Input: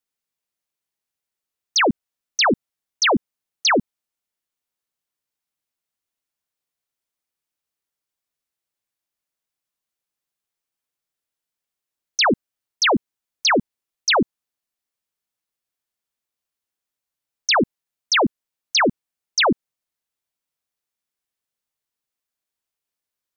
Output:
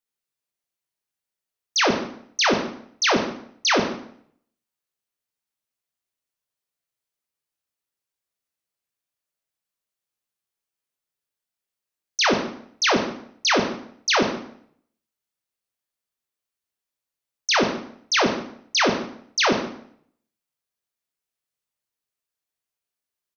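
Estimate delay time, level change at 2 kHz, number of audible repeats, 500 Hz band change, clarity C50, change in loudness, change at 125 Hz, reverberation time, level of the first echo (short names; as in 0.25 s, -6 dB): 0.145 s, -1.5 dB, 1, -1.0 dB, 6.5 dB, -2.0 dB, -1.5 dB, 0.65 s, -17.5 dB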